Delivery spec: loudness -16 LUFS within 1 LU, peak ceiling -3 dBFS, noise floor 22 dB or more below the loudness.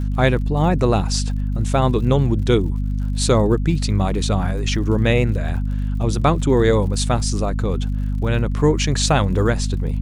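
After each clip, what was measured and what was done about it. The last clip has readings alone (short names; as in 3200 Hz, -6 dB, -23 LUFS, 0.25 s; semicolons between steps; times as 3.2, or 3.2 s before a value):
ticks 61/s; hum 50 Hz; harmonics up to 250 Hz; hum level -19 dBFS; loudness -19.5 LUFS; peak -3.0 dBFS; loudness target -16.0 LUFS
-> de-click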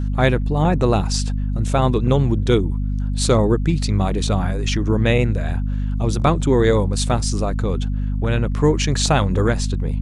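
ticks 0/s; hum 50 Hz; harmonics up to 250 Hz; hum level -19 dBFS
-> de-hum 50 Hz, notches 5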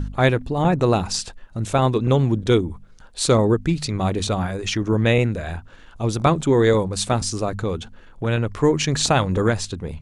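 hum none; loudness -21.0 LUFS; peak -4.5 dBFS; loudness target -16.0 LUFS
-> gain +5 dB; limiter -3 dBFS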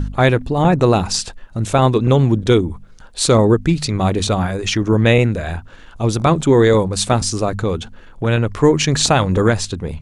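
loudness -16.0 LUFS; peak -3.0 dBFS; noise floor -40 dBFS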